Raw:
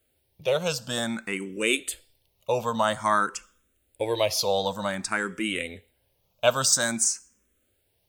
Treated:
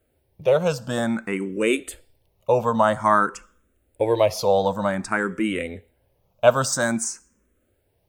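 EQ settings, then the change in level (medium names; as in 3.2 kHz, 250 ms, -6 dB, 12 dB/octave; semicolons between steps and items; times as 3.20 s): peaking EQ 3.5 kHz -8.5 dB 1.6 oct; treble shelf 4.5 kHz -11.5 dB; +7.0 dB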